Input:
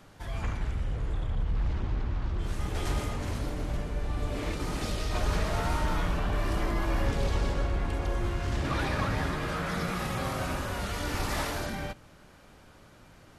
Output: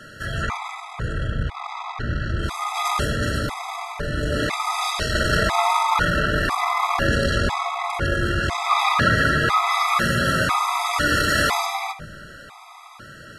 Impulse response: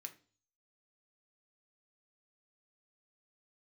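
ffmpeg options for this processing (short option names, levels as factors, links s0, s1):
-filter_complex "[0:a]equalizer=f=1600:t=o:w=1.3:g=7,aeval=exprs='0.133*(cos(1*acos(clip(val(0)/0.133,-1,1)))-cos(1*PI/2))+0.0335*(cos(2*acos(clip(val(0)/0.133,-1,1)))-cos(2*PI/2))+0.00596*(cos(5*acos(clip(val(0)/0.133,-1,1)))-cos(5*PI/2))':c=same,acontrast=83,asplit=2[s0][s1];[1:a]atrim=start_sample=2205,asetrate=23373,aresample=44100[s2];[s1][s2]afir=irnorm=-1:irlink=0,volume=1.88[s3];[s0][s3]amix=inputs=2:normalize=0,afftfilt=real='re*gt(sin(2*PI*1*pts/sr)*(1-2*mod(floor(b*sr/1024/660),2)),0)':imag='im*gt(sin(2*PI*1*pts/sr)*(1-2*mod(floor(b*sr/1024/660),2)),0)':win_size=1024:overlap=0.75,volume=0.75"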